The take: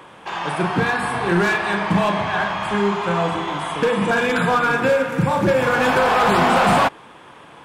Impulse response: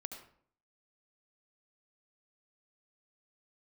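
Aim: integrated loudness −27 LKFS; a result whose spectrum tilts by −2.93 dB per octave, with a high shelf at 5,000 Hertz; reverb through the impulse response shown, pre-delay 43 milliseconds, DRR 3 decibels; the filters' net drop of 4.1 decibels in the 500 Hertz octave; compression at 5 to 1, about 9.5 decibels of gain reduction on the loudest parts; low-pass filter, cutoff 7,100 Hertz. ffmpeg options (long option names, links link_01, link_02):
-filter_complex "[0:a]lowpass=7100,equalizer=frequency=500:width_type=o:gain=-5,highshelf=frequency=5000:gain=4,acompressor=threshold=-25dB:ratio=5,asplit=2[link_01][link_02];[1:a]atrim=start_sample=2205,adelay=43[link_03];[link_02][link_03]afir=irnorm=-1:irlink=0,volume=-0.5dB[link_04];[link_01][link_04]amix=inputs=2:normalize=0,volume=-1dB"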